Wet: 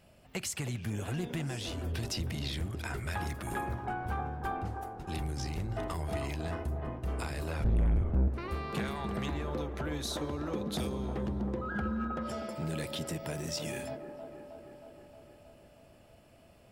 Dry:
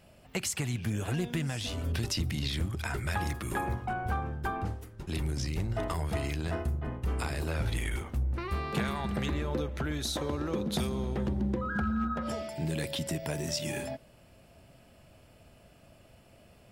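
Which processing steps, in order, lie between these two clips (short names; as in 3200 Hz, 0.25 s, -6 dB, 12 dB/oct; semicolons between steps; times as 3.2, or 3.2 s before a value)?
7.64–8.28 tilt -4.5 dB/oct; soft clip -21 dBFS, distortion -4 dB; on a send: band-limited delay 0.315 s, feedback 68%, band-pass 580 Hz, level -5 dB; on the sum: gain -3 dB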